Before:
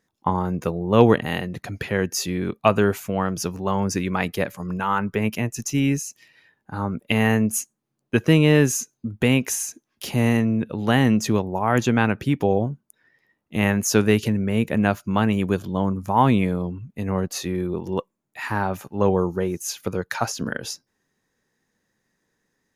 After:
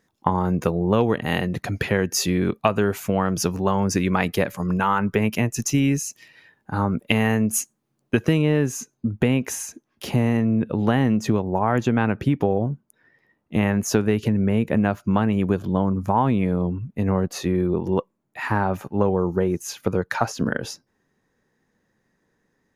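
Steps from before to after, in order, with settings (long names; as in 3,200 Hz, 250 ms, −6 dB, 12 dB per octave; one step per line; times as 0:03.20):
high-shelf EQ 2,500 Hz −2.5 dB, from 0:08.42 −10.5 dB
downward compressor 6 to 1, threshold −21 dBFS, peak gain reduction 12.5 dB
level +5.5 dB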